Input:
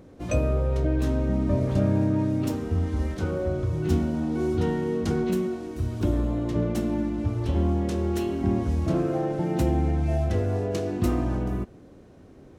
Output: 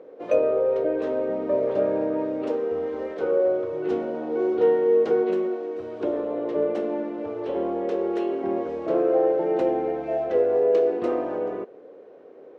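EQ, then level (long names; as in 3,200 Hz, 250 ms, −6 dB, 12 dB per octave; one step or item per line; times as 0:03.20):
high-pass with resonance 470 Hz, resonance Q 4.5
low-pass filter 2,600 Hz 12 dB per octave
0.0 dB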